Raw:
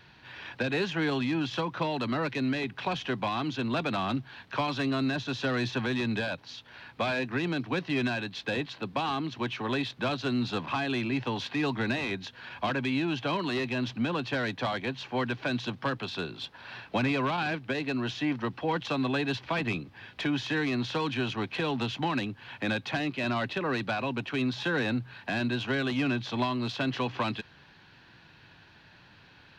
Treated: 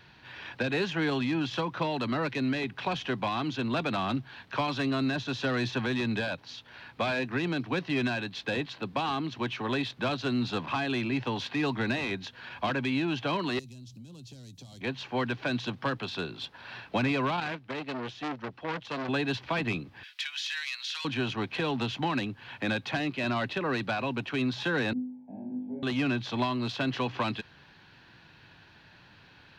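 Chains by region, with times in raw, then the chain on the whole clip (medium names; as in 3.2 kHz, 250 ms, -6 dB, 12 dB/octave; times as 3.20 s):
13.59–14.81 s: FFT filter 130 Hz 0 dB, 200 Hz -6 dB, 1.7 kHz -30 dB, 7 kHz +9 dB + compression, threshold -44 dBFS
17.40–19.09 s: gate -33 dBFS, range -8 dB + transformer saturation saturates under 1.7 kHz
20.03–21.05 s: Bessel high-pass 2.2 kHz, order 4 + treble shelf 2.9 kHz +7.5 dB
24.93–25.83 s: cascade formant filter u + static phaser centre 330 Hz, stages 6 + flutter echo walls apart 3.4 m, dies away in 0.68 s
whole clip: none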